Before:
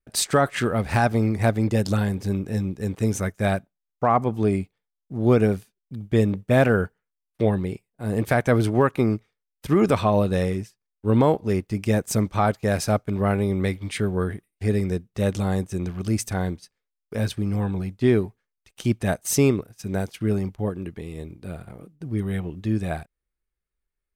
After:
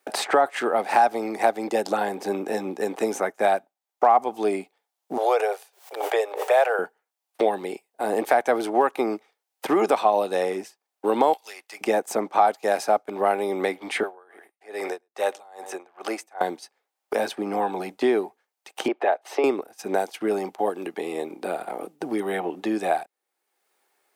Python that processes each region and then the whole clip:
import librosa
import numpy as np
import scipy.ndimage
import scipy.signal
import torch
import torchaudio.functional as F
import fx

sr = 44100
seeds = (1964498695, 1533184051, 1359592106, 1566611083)

y = fx.chain(x, sr, fx.steep_highpass(hz=450.0, slope=48),
    fx.pre_swell(db_per_s=110.0), at=(5.17, 6.79))
y = fx.chain(y, sr, fx.highpass(hz=1400.0, slope=12),
    fx.tube_stage(drive_db=29.0, bias=0.65),
    fx.band_squash(depth_pct=100), at=(11.33, 11.81))
y = fx.chain(y, sr, fx.highpass(hz=610.0, slope=12),
    fx.echo_single(ms=105, db=-21.0),
    fx.tremolo_db(hz=2.4, depth_db=32), at=(14.03, 16.41))
y = fx.chain(y, sr, fx.highpass(hz=380.0, slope=24),
    fx.air_absorb(metres=390.0),
    fx.band_squash(depth_pct=70), at=(18.88, 19.44))
y = scipy.signal.sosfilt(scipy.signal.butter(4, 310.0, 'highpass', fs=sr, output='sos'), y)
y = fx.peak_eq(y, sr, hz=790.0, db=12.5, octaves=0.51)
y = fx.band_squash(y, sr, depth_pct=70)